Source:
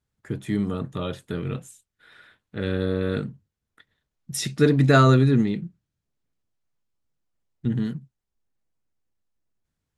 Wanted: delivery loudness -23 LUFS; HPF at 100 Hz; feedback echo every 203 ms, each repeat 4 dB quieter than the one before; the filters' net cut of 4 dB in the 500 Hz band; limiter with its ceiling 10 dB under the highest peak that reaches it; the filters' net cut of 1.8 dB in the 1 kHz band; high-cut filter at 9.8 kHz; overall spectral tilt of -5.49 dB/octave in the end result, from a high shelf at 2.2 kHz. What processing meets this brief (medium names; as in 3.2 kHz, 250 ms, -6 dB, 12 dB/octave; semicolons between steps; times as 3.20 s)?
high-pass 100 Hz; low-pass 9.8 kHz; peaking EQ 500 Hz -4.5 dB; peaking EQ 1 kHz -4 dB; treble shelf 2.2 kHz +6.5 dB; peak limiter -16 dBFS; feedback delay 203 ms, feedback 63%, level -4 dB; trim +4 dB